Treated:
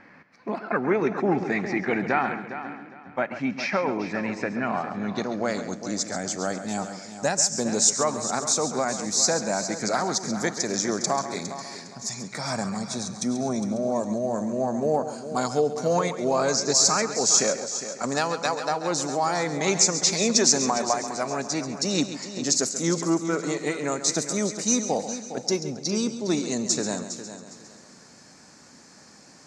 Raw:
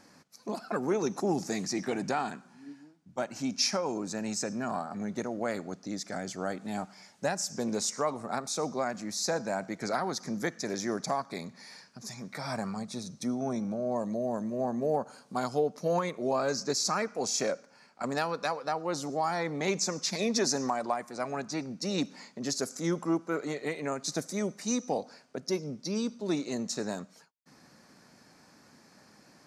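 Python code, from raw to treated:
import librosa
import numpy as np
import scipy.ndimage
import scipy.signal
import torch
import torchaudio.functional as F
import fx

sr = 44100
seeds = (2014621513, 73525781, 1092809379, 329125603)

y = fx.filter_sweep_lowpass(x, sr, from_hz=2100.0, to_hz=7400.0, start_s=4.54, end_s=5.76, q=3.0)
y = fx.echo_heads(y, sr, ms=136, heads='first and third', feedback_pct=42, wet_db=-12)
y = F.gain(torch.from_numpy(y), 5.0).numpy()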